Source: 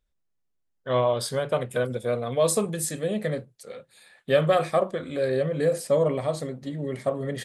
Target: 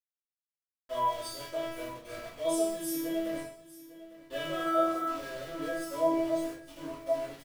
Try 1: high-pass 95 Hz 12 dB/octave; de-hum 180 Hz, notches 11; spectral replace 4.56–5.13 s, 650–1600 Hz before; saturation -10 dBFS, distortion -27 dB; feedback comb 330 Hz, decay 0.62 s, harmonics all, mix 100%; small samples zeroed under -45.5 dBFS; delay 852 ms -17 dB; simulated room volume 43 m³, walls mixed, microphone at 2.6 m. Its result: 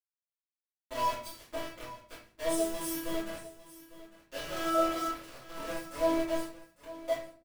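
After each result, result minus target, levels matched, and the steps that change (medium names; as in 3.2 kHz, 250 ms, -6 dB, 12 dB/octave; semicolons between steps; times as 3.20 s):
saturation: distortion +14 dB; small samples zeroed: distortion +10 dB
change: saturation -2.5 dBFS, distortion -41 dB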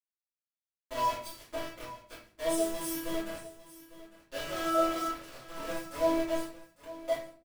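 small samples zeroed: distortion +10 dB
change: small samples zeroed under -54 dBFS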